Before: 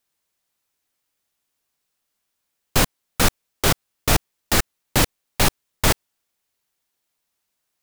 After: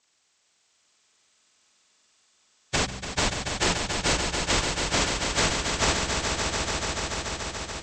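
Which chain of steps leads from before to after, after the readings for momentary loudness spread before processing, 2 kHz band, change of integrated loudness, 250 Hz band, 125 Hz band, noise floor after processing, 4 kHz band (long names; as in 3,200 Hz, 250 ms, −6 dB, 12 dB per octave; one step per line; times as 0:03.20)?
3 LU, −0.5 dB, −4.0 dB, −4.0 dB, −5.5 dB, −69 dBFS, 0.0 dB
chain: partials spread apart or drawn together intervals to 78%
hum removal 64.25 Hz, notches 3
downward compressor 4 to 1, threshold −30 dBFS, peak gain reduction 13.5 dB
harmonic generator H 2 −25 dB, 5 −34 dB, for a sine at −15.5 dBFS
brickwall limiter −21 dBFS, peak gain reduction 5.5 dB
on a send: echo that builds up and dies away 144 ms, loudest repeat 5, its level −7.5 dB
on the sum: level +7 dB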